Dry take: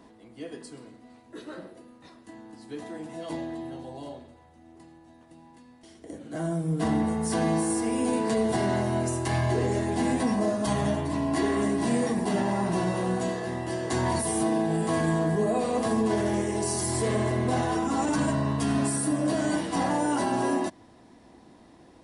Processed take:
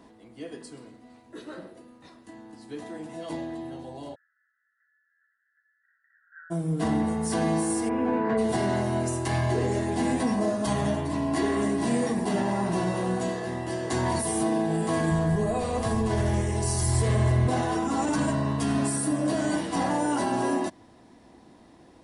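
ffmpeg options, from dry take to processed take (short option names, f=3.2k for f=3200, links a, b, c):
-filter_complex "[0:a]asplit=3[a][b][c];[a]afade=t=out:st=4.14:d=0.02[d];[b]asuperpass=centerf=1600:order=20:qfactor=2.7,afade=t=in:st=4.14:d=0.02,afade=t=out:st=6.5:d=0.02[e];[c]afade=t=in:st=6.5:d=0.02[f];[d][e][f]amix=inputs=3:normalize=0,asplit=3[g][h][i];[g]afade=t=out:st=7.88:d=0.02[j];[h]lowpass=f=1.6k:t=q:w=1.7,afade=t=in:st=7.88:d=0.02,afade=t=out:st=8.37:d=0.02[k];[i]afade=t=in:st=8.37:d=0.02[l];[j][k][l]amix=inputs=3:normalize=0,asplit=3[m][n][o];[m]afade=t=out:st=15.1:d=0.02[p];[n]asubboost=boost=9:cutoff=86,afade=t=in:st=15.1:d=0.02,afade=t=out:st=17.47:d=0.02[q];[o]afade=t=in:st=17.47:d=0.02[r];[p][q][r]amix=inputs=3:normalize=0"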